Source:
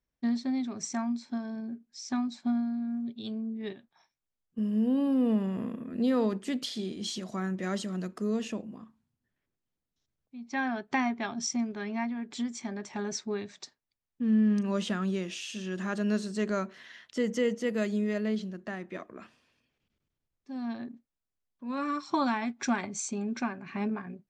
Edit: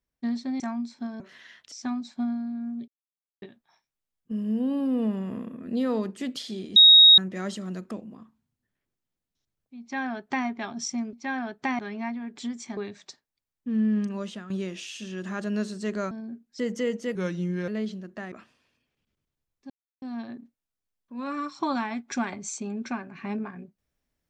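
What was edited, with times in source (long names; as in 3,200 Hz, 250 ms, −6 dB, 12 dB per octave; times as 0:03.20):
0:00.60–0:00.91: remove
0:01.51–0:01.99: swap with 0:16.65–0:17.17
0:03.15–0:03.69: silence
0:07.03–0:07.45: beep over 3,770 Hz −9.5 dBFS
0:08.18–0:08.52: remove
0:10.42–0:11.08: duplicate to 0:11.74
0:12.72–0:13.31: remove
0:14.52–0:15.04: fade out, to −12.5 dB
0:17.73–0:18.18: play speed 85%
0:18.82–0:19.15: remove
0:20.53: splice in silence 0.32 s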